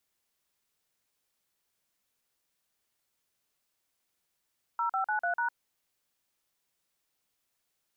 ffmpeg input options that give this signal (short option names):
-f lavfi -i "aevalsrc='0.0335*clip(min(mod(t,0.148),0.105-mod(t,0.148))/0.002,0,1)*(eq(floor(t/0.148),0)*(sin(2*PI*941*mod(t,0.148))+sin(2*PI*1336*mod(t,0.148)))+eq(floor(t/0.148),1)*(sin(2*PI*770*mod(t,0.148))+sin(2*PI*1336*mod(t,0.148)))+eq(floor(t/0.148),2)*(sin(2*PI*852*mod(t,0.148))+sin(2*PI*1477*mod(t,0.148)))+eq(floor(t/0.148),3)*(sin(2*PI*697*mod(t,0.148))+sin(2*PI*1477*mod(t,0.148)))+eq(floor(t/0.148),4)*(sin(2*PI*941*mod(t,0.148))+sin(2*PI*1477*mod(t,0.148))))':d=0.74:s=44100"